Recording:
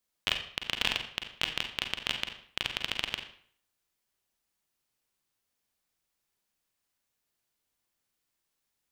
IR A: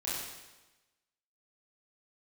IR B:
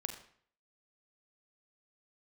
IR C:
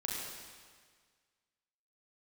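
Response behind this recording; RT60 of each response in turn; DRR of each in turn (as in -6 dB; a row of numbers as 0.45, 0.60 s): B; 1.1, 0.55, 1.7 s; -9.0, 5.0, -4.0 dB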